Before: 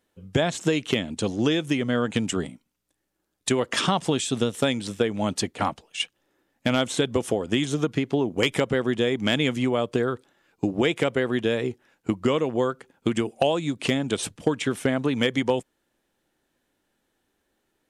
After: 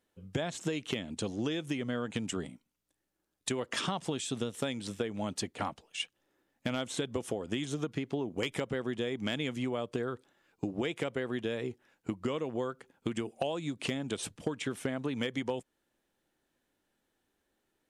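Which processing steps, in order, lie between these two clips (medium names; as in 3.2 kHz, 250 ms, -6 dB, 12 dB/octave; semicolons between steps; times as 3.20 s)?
compression 2:1, threshold -28 dBFS, peak gain reduction 7 dB; trim -5.5 dB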